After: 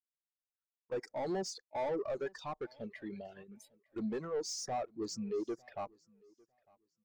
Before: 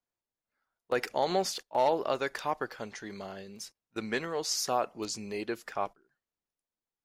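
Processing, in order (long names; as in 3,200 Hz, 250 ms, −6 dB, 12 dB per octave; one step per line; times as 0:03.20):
reverb reduction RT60 1 s
leveller curve on the samples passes 1
phaser swept by the level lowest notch 520 Hz, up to 3,000 Hz, full sweep at −28 dBFS
soft clipping −34.5 dBFS, distortion −5 dB
on a send: repeating echo 902 ms, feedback 32%, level −18.5 dB
on the sum: every bin expanded away from the loudest bin 1.5 to 1
level +4.5 dB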